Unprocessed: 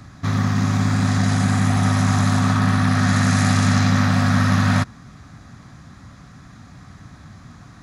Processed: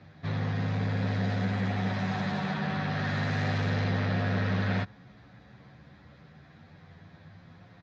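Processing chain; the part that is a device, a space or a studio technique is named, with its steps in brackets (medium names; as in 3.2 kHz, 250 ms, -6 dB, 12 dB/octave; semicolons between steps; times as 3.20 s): barber-pole flanger into a guitar amplifier (endless flanger 9.9 ms +0.3 Hz; saturation -15 dBFS, distortion -17 dB; cabinet simulation 99–4000 Hz, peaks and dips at 120 Hz -4 dB, 250 Hz -8 dB, 500 Hz +7 dB, 1.2 kHz -10 dB); trim -3.5 dB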